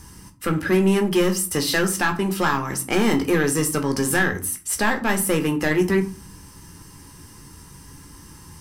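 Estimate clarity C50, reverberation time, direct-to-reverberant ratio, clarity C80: 14.0 dB, 0.40 s, 4.5 dB, 19.0 dB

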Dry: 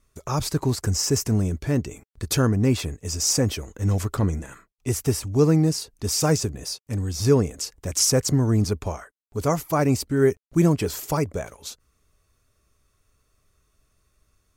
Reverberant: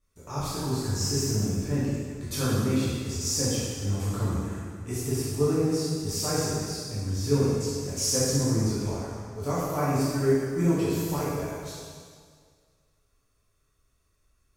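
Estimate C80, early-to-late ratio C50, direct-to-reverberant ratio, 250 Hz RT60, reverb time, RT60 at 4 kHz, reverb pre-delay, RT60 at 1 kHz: -0.5 dB, -3.5 dB, -10.0 dB, 1.9 s, 1.9 s, 1.8 s, 5 ms, 1.9 s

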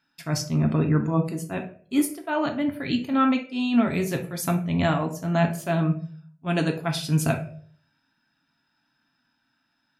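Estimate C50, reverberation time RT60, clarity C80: 10.0 dB, 0.50 s, 15.5 dB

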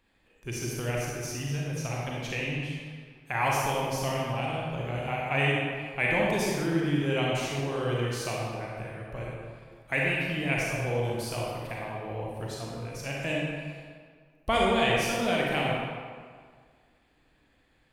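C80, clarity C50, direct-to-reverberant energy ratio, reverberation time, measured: 0.0 dB, -2.5 dB, -4.0 dB, 1.8 s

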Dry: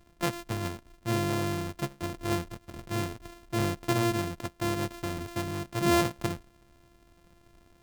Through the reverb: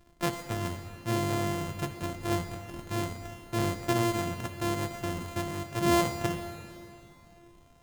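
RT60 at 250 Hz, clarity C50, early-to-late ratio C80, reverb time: 2.8 s, 8.0 dB, 8.5 dB, 2.9 s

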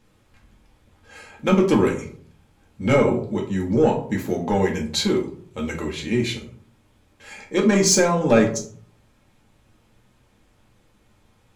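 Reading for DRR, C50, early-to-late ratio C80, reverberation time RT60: -0.5 dB, 9.0 dB, 14.0 dB, 0.55 s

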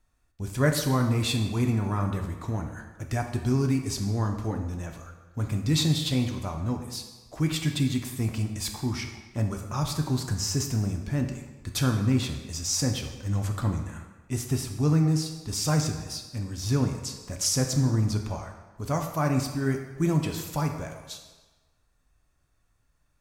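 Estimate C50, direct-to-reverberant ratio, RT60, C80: 6.5 dB, 3.5 dB, 1.3 s, 9.0 dB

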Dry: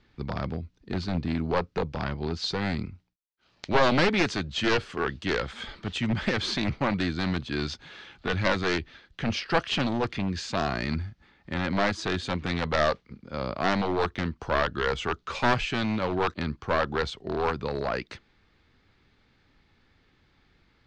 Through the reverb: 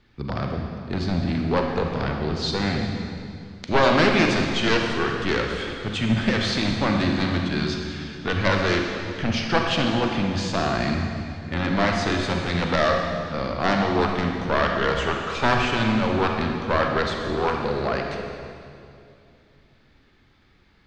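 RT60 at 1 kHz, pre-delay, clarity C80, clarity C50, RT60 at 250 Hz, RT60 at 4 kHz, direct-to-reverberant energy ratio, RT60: 2.3 s, 32 ms, 3.5 dB, 2.5 dB, 3.1 s, 2.2 s, 1.5 dB, 2.5 s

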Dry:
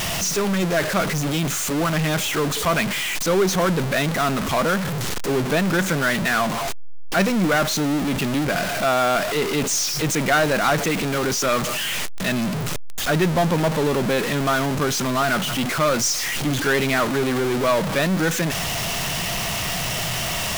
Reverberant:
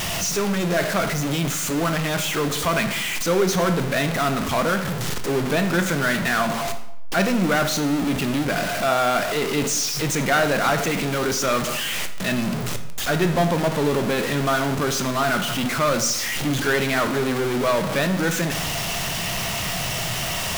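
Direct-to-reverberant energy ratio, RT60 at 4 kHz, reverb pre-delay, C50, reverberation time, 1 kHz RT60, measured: 7.5 dB, 0.60 s, 14 ms, 10.5 dB, 0.80 s, 0.80 s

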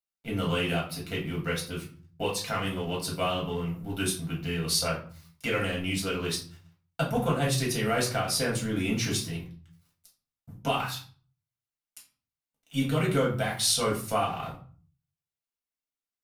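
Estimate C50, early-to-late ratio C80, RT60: 8.0 dB, 13.5 dB, 0.45 s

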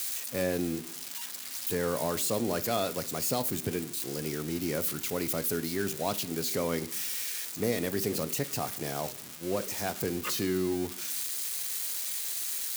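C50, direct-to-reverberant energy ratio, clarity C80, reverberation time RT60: 17.0 dB, 10.0 dB, 20.0 dB, 0.70 s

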